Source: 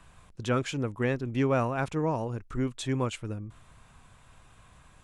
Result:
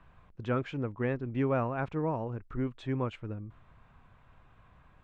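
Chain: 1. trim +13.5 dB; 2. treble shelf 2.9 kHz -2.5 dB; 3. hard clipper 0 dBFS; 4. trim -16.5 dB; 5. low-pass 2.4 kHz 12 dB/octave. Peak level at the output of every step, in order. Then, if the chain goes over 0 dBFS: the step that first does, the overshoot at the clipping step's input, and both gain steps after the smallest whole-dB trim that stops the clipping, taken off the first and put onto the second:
-2.0 dBFS, -2.0 dBFS, -2.0 dBFS, -18.5 dBFS, -18.5 dBFS; nothing clips

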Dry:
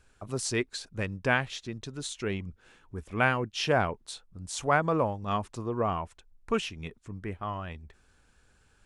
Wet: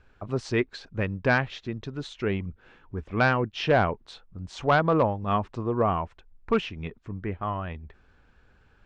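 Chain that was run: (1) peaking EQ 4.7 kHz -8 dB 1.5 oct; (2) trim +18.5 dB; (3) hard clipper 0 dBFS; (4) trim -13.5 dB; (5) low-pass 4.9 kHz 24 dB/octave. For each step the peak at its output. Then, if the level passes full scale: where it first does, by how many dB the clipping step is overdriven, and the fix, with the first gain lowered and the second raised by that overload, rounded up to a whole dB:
-11.5 dBFS, +7.0 dBFS, 0.0 dBFS, -13.5 dBFS, -12.0 dBFS; step 2, 7.0 dB; step 2 +11.5 dB, step 4 -6.5 dB

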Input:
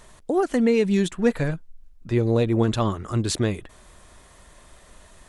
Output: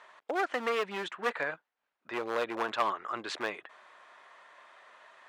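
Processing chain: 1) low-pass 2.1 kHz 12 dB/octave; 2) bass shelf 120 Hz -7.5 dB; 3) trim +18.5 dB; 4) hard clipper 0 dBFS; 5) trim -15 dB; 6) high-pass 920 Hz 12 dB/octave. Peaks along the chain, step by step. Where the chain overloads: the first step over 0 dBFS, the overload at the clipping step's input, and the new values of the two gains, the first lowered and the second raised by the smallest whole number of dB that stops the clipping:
-8.0 dBFS, -9.5 dBFS, +9.0 dBFS, 0.0 dBFS, -15.0 dBFS, -15.5 dBFS; step 3, 9.0 dB; step 3 +9.5 dB, step 5 -6 dB

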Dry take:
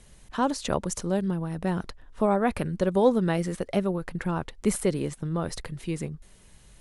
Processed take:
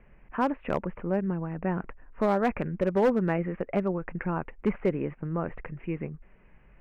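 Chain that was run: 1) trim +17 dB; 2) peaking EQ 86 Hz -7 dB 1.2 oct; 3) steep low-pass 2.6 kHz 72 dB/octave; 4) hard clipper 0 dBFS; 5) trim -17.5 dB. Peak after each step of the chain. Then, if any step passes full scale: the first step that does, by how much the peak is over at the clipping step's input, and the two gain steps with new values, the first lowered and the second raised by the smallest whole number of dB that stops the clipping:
+7.5 dBFS, +7.0 dBFS, +7.0 dBFS, 0.0 dBFS, -17.5 dBFS; step 1, 7.0 dB; step 1 +10 dB, step 5 -10.5 dB

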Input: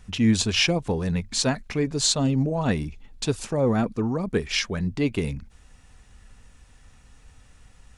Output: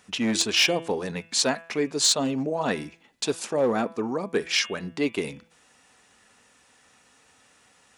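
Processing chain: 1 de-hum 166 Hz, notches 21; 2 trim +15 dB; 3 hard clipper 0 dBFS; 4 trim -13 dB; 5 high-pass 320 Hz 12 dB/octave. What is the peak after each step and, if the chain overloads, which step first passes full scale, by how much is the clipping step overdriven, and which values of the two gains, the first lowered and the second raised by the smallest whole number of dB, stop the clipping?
-9.5 dBFS, +5.5 dBFS, 0.0 dBFS, -13.0 dBFS, -10.0 dBFS; step 2, 5.5 dB; step 2 +9 dB, step 4 -7 dB

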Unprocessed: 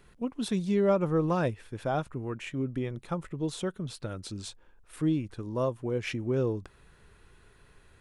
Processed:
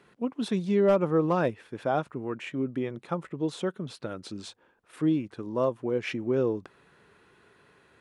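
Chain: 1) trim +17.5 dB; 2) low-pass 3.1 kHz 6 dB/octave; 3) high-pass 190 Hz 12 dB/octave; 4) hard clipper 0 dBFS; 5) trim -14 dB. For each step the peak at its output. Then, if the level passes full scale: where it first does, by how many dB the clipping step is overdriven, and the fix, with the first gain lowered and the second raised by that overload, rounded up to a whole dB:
+3.0 dBFS, +3.0 dBFS, +4.0 dBFS, 0.0 dBFS, -14.0 dBFS; step 1, 4.0 dB; step 1 +13.5 dB, step 5 -10 dB

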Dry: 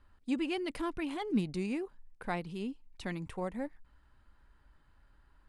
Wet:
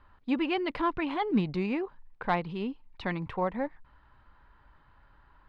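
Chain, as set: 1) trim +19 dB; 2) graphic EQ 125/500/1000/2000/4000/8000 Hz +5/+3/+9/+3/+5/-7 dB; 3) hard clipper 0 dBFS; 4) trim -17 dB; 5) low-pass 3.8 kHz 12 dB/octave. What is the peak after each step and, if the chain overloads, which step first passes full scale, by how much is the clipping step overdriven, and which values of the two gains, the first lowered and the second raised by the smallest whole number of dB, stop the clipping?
-1.0 dBFS, +4.0 dBFS, 0.0 dBFS, -17.0 dBFS, -16.5 dBFS; step 2, 4.0 dB; step 1 +15 dB, step 4 -13 dB

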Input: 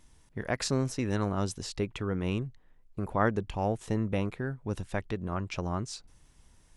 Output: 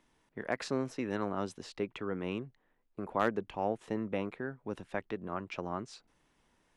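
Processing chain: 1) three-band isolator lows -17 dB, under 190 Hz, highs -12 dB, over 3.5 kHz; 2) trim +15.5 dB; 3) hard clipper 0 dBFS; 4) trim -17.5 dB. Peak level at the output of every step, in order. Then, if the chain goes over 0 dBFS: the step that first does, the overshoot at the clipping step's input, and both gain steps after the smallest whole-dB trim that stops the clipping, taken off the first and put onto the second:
-11.0 dBFS, +4.5 dBFS, 0.0 dBFS, -17.5 dBFS; step 2, 4.5 dB; step 2 +10.5 dB, step 4 -12.5 dB

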